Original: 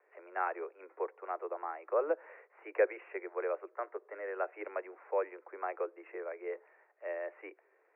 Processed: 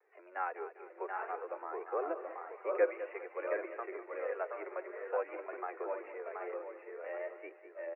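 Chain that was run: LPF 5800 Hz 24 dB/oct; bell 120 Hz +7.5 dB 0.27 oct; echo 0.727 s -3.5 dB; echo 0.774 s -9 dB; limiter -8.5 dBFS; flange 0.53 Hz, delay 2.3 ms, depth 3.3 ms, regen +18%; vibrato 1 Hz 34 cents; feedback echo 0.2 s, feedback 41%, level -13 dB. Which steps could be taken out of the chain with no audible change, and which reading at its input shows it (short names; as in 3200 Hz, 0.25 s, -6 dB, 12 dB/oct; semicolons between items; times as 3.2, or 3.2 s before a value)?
LPF 5800 Hz: input band ends at 2600 Hz; bell 120 Hz: input band starts at 290 Hz; limiter -8.5 dBFS: input peak -16.0 dBFS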